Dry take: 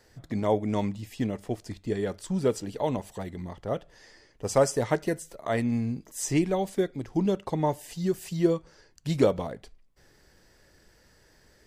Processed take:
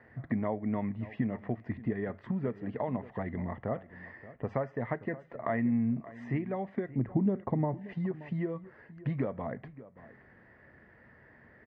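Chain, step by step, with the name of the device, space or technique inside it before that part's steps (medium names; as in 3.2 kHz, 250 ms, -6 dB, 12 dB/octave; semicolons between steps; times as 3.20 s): bass amplifier (compression 5:1, threshold -34 dBFS, peak gain reduction 16 dB; cabinet simulation 76–2200 Hz, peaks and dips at 87 Hz +4 dB, 130 Hz +7 dB, 230 Hz +9 dB, 680 Hz +5 dB, 1.1 kHz +5 dB, 1.9 kHz +10 dB); 6.91–7.89 s: tilt shelf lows +6 dB, about 820 Hz; echo from a far wall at 99 m, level -17 dB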